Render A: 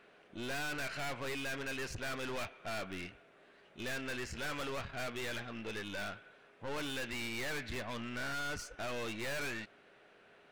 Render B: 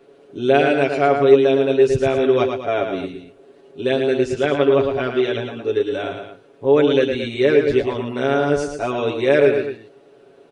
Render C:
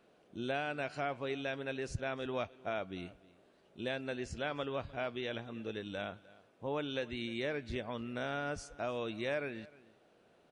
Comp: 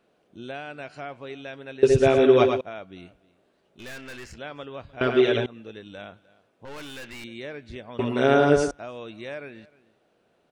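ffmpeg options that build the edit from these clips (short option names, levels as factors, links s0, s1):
-filter_complex "[1:a]asplit=3[s0][s1][s2];[0:a]asplit=2[s3][s4];[2:a]asplit=6[s5][s6][s7][s8][s9][s10];[s5]atrim=end=1.832[s11];[s0]atrim=start=1.828:end=2.612[s12];[s6]atrim=start=2.608:end=3.792[s13];[s3]atrim=start=3.788:end=4.362[s14];[s7]atrim=start=4.358:end=5.012[s15];[s1]atrim=start=5.008:end=5.462[s16];[s8]atrim=start=5.458:end=6.652[s17];[s4]atrim=start=6.648:end=7.242[s18];[s9]atrim=start=7.238:end=7.992[s19];[s2]atrim=start=7.988:end=8.712[s20];[s10]atrim=start=8.708[s21];[s11][s12]acrossfade=d=0.004:c1=hsin:c2=hsin[s22];[s22][s13]acrossfade=d=0.004:c1=hsin:c2=hsin[s23];[s23][s14]acrossfade=d=0.004:c1=hsin:c2=hsin[s24];[s24][s15]acrossfade=d=0.004:c1=hsin:c2=hsin[s25];[s25][s16]acrossfade=d=0.004:c1=hsin:c2=hsin[s26];[s26][s17]acrossfade=d=0.004:c1=hsin:c2=hsin[s27];[s27][s18]acrossfade=d=0.004:c1=hsin:c2=hsin[s28];[s28][s19]acrossfade=d=0.004:c1=hsin:c2=hsin[s29];[s29][s20]acrossfade=d=0.004:c1=hsin:c2=hsin[s30];[s30][s21]acrossfade=d=0.004:c1=hsin:c2=hsin"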